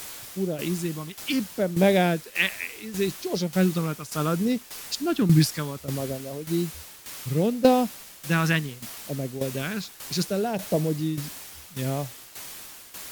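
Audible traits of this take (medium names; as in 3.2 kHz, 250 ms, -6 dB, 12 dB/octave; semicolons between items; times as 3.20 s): phasing stages 2, 0.68 Hz, lowest notch 530–1300 Hz; a quantiser's noise floor 8-bit, dither triangular; tremolo saw down 1.7 Hz, depth 75%; AAC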